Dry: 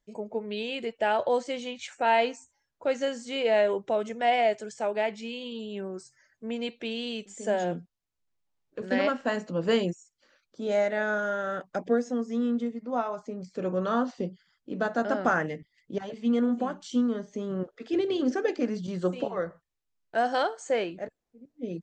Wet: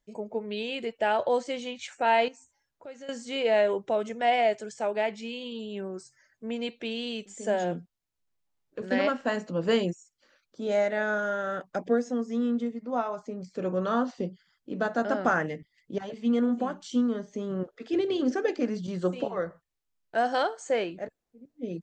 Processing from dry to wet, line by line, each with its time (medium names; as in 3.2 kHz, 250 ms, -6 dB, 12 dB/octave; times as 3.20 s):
2.28–3.09 s: compression 2:1, threshold -53 dBFS